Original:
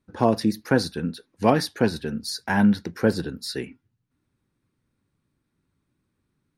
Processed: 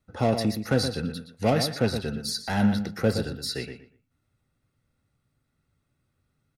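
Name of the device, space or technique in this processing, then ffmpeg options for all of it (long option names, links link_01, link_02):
one-band saturation: -filter_complex "[0:a]acrossover=split=470|2300[link_01][link_02][link_03];[link_02]asoftclip=type=tanh:threshold=-29dB[link_04];[link_01][link_04][link_03]amix=inputs=3:normalize=0,equalizer=frequency=190:width_type=o:width=0.46:gain=-5,aecho=1:1:1.5:0.5,asplit=2[link_05][link_06];[link_06]adelay=119,lowpass=frequency=3800:poles=1,volume=-8dB,asplit=2[link_07][link_08];[link_08]adelay=119,lowpass=frequency=3800:poles=1,volume=0.22,asplit=2[link_09][link_10];[link_10]adelay=119,lowpass=frequency=3800:poles=1,volume=0.22[link_11];[link_05][link_07][link_09][link_11]amix=inputs=4:normalize=0"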